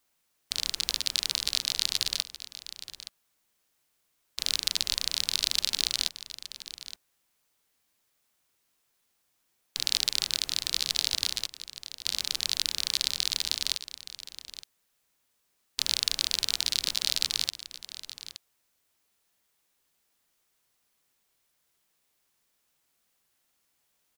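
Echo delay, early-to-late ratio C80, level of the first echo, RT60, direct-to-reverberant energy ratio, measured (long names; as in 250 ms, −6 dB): 871 ms, no reverb audible, −14.0 dB, no reverb audible, no reverb audible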